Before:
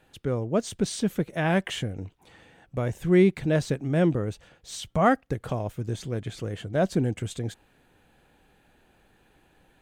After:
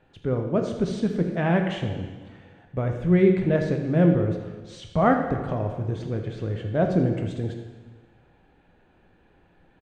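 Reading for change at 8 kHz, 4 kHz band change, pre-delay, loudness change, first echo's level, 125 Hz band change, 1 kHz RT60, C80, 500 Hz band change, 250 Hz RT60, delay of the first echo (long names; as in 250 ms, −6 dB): below −10 dB, −5.0 dB, 5 ms, +2.5 dB, −13.5 dB, +3.5 dB, 1.4 s, 7.0 dB, +2.5 dB, 1.3 s, 81 ms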